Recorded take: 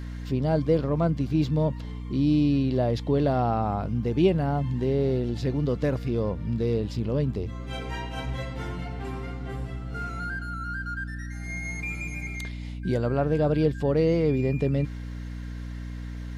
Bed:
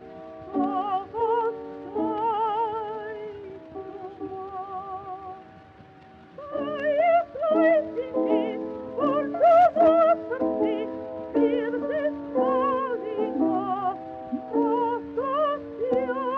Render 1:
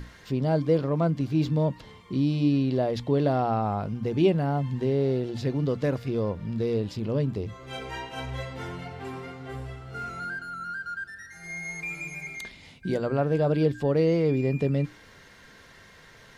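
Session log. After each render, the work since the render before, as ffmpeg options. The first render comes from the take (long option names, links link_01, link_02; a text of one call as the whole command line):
ffmpeg -i in.wav -af "bandreject=frequency=60:width_type=h:width=6,bandreject=frequency=120:width_type=h:width=6,bandreject=frequency=180:width_type=h:width=6,bandreject=frequency=240:width_type=h:width=6,bandreject=frequency=300:width_type=h:width=6" out.wav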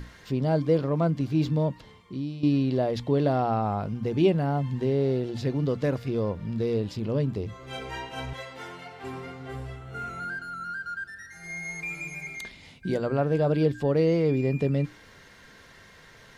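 ffmpeg -i in.wav -filter_complex "[0:a]asettb=1/sr,asplit=3[link_01][link_02][link_03];[link_01]atrim=end=8.334[link_04];[link_02]atrim=start=8.33:end=9.04,asetpts=PTS-STARTPTS,afade=type=in:duration=0.004:curve=qsin,afade=type=out:start_time=0.706:duration=0.004:curve=qsin,highpass=frequency=580:poles=1[link_05];[link_03]atrim=start=9.036[link_06];[link_04][link_05]acrossfade=duration=0.004:curve1=hsin:curve2=qsin[link_07];[link_07][link_06]acrossfade=duration=0.004:curve1=qsin:curve2=hsin,asettb=1/sr,asplit=3[link_08][link_09][link_10];[link_08]atrim=end=9.774[link_11];[link_09]atrim=start=9.77:end=10.29,asetpts=PTS-STARTPTS,afade=type=in:duration=0.004:curve=qsin,afade=type=out:start_time=0.516:duration=0.004:curve=qsin,equalizer=frequency=4900:width_type=o:width=0.3:gain=-10.5[link_12];[link_10]atrim=start=10.286[link_13];[link_11][link_12]acrossfade=duration=0.004:curve1=hsin:curve2=qsin[link_14];[link_14][link_13]acrossfade=duration=0.004:curve1=qsin:curve2=hsin,asplit=2[link_15][link_16];[link_15]atrim=end=2.43,asetpts=PTS-STARTPTS,afade=type=out:start_time=1.51:duration=0.92:silence=0.251189[link_17];[link_16]atrim=start=2.43,asetpts=PTS-STARTPTS,afade=type=in:duration=0.004:curve=hsin:silence=0.251189[link_18];[link_17][link_18]concat=n=2:v=0:a=1" out.wav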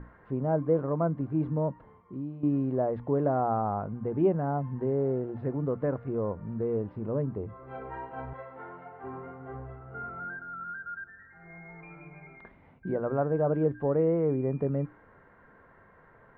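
ffmpeg -i in.wav -af "lowpass=frequency=1400:width=0.5412,lowpass=frequency=1400:width=1.3066,lowshelf=frequency=360:gain=-6" out.wav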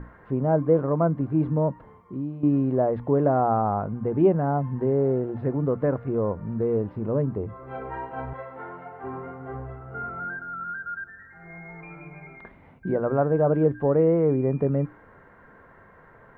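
ffmpeg -i in.wav -af "volume=5.5dB" out.wav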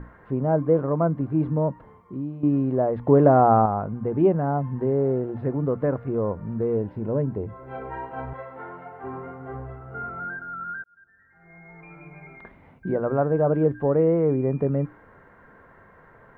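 ffmpeg -i in.wav -filter_complex "[0:a]asettb=1/sr,asplit=3[link_01][link_02][link_03];[link_01]atrim=end=6.754[link_04];[link_02]atrim=start=6.75:end=8.05,asetpts=PTS-STARTPTS,afade=type=in:duration=0.004:curve=qsin,afade=type=out:start_time=1.296:duration=0.004:curve=qsin,asuperstop=centerf=1200:order=4:qfactor=7.8[link_05];[link_03]atrim=start=8.046[link_06];[link_04][link_05]acrossfade=duration=0.004:curve1=hsin:curve2=qsin[link_07];[link_07][link_06]acrossfade=duration=0.004:curve1=qsin:curve2=hsin,asplit=4[link_08][link_09][link_10][link_11];[link_08]atrim=end=3.072[link_12];[link_09]atrim=start=3.068:end=3.662,asetpts=PTS-STARTPTS,volume=5.5dB[link_13];[link_10]atrim=start=3.658:end=10.84,asetpts=PTS-STARTPTS,afade=type=out:start_time=7.178:duration=0.004:curve=hsin[link_14];[link_11]atrim=start=10.84,asetpts=PTS-STARTPTS,afade=type=in:duration=1.52[link_15];[link_12][link_13]acrossfade=duration=0.004:curve1=hsin:curve2=hsin[link_16];[link_14][link_15]concat=n=2:v=0:a=1[link_17];[link_16][link_17]acrossfade=duration=0.004:curve1=hsin:curve2=hsin" out.wav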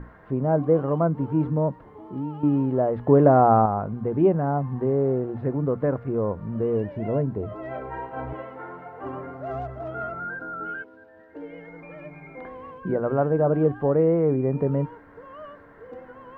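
ffmpeg -i in.wav -i bed.wav -filter_complex "[1:a]volume=-17.5dB[link_01];[0:a][link_01]amix=inputs=2:normalize=0" out.wav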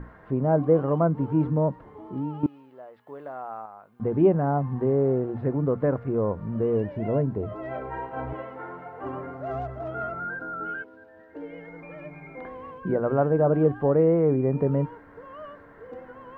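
ffmpeg -i in.wav -filter_complex "[0:a]asettb=1/sr,asplit=3[link_01][link_02][link_03];[link_01]atrim=end=2.464[link_04];[link_02]atrim=start=2.46:end=4,asetpts=PTS-STARTPTS,afade=type=in:duration=0.004:curve=qsin,afade=type=out:start_time=1.536:duration=0.004:curve=qsin,aderivative[link_05];[link_03]atrim=start=3.996[link_06];[link_04][link_05]acrossfade=duration=0.004:curve1=hsin:curve2=qsin[link_07];[link_07][link_06]acrossfade=duration=0.004:curve1=qsin:curve2=hsin" out.wav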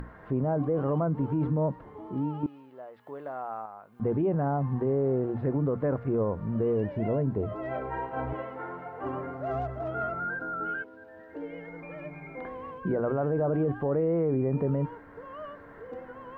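ffmpeg -i in.wav -af "acompressor=mode=upward:threshold=-43dB:ratio=2.5,alimiter=limit=-20dB:level=0:latency=1:release=21" out.wav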